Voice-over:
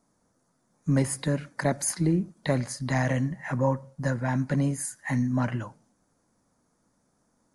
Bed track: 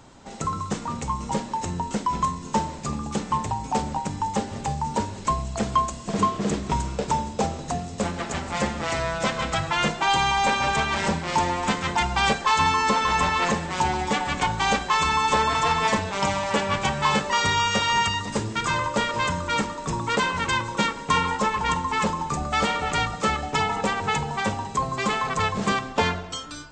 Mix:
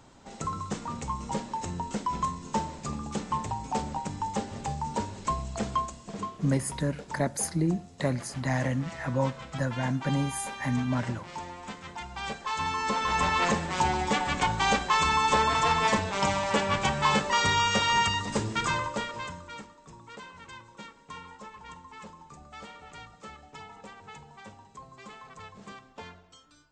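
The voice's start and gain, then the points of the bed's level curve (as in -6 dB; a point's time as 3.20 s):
5.55 s, -2.5 dB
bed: 5.66 s -5.5 dB
6.44 s -16.5 dB
12.04 s -16.5 dB
13.36 s -2.5 dB
18.64 s -2.5 dB
19.78 s -22 dB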